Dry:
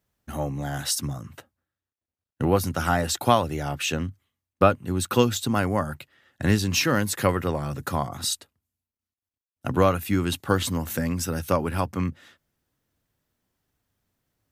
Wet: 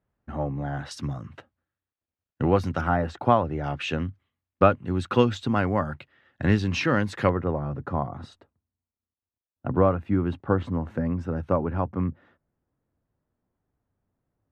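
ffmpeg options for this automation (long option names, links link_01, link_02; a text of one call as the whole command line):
ffmpeg -i in.wav -af "asetnsamples=nb_out_samples=441:pad=0,asendcmd='0.91 lowpass f 3000;2.81 lowpass f 1500;3.64 lowpass f 2800;7.29 lowpass f 1100',lowpass=1600" out.wav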